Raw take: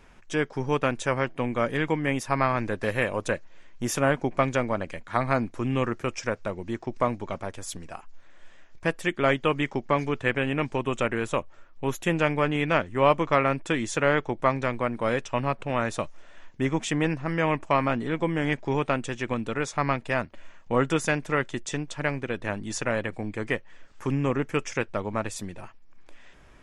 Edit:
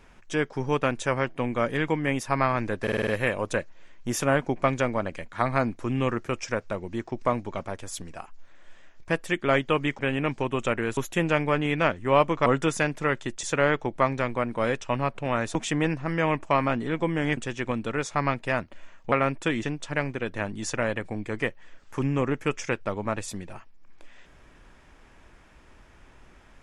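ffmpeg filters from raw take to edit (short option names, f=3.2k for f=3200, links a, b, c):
-filter_complex "[0:a]asplit=14[a][b][c][d][e][f][g][h][i][j][k][l][m][n];[a]atrim=end=2.872[o];[b]atrim=start=2.818:end=2.872[p];[c]atrim=start=2.818:end=2.872[q];[d]atrim=start=2.818:end=2.872[r];[e]atrim=start=2.818:end=2.872[s];[f]atrim=start=2.818:end=9.742[t];[g]atrim=start=10.328:end=11.312[u];[h]atrim=start=11.868:end=13.362[v];[i]atrim=start=20.738:end=21.712[w];[j]atrim=start=13.868:end=15.992[x];[k]atrim=start=16.748:end=18.572[y];[l]atrim=start=18.988:end=20.742[z];[m]atrim=start=13.358:end=13.872[aa];[n]atrim=start=21.708[ab];[o][p]acrossfade=d=0.004:c1=hsin:c2=hsin[ac];[ac][q]acrossfade=d=0.004:c1=hsin:c2=hsin[ad];[ad][r]acrossfade=d=0.004:c1=hsin:c2=hsin[ae];[ae][s]acrossfade=d=0.004:c1=hsin:c2=hsin[af];[af][t]acrossfade=d=0.004:c1=hsin:c2=hsin[ag];[ag][u]acrossfade=d=0.004:c1=hsin:c2=hsin[ah];[ah][v]acrossfade=d=0.004:c1=hsin:c2=hsin[ai];[ai][w]acrossfade=d=0.004:c1=hsin:c2=hsin[aj];[aj][x]acrossfade=d=0.004:c1=hsin:c2=hsin[ak];[ak][y]acrossfade=d=0.004:c1=hsin:c2=hsin[al];[al][z]acrossfade=d=0.004:c1=hsin:c2=hsin[am];[am][aa]acrossfade=d=0.004:c1=hsin:c2=hsin[an];[an][ab]acrossfade=d=0.004:c1=hsin:c2=hsin"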